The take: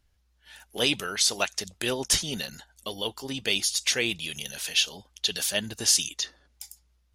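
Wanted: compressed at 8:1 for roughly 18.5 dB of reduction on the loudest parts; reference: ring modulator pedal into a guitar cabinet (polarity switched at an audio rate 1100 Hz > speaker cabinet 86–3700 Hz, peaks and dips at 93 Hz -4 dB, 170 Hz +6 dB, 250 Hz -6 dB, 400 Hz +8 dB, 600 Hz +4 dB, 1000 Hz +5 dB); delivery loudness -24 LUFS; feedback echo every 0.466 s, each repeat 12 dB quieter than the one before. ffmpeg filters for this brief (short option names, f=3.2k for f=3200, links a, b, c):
-af "acompressor=threshold=-38dB:ratio=8,aecho=1:1:466|932|1398:0.251|0.0628|0.0157,aeval=exprs='val(0)*sgn(sin(2*PI*1100*n/s))':c=same,highpass=86,equalizer=f=93:t=q:w=4:g=-4,equalizer=f=170:t=q:w=4:g=6,equalizer=f=250:t=q:w=4:g=-6,equalizer=f=400:t=q:w=4:g=8,equalizer=f=600:t=q:w=4:g=4,equalizer=f=1k:t=q:w=4:g=5,lowpass=f=3.7k:w=0.5412,lowpass=f=3.7k:w=1.3066,volume=19dB"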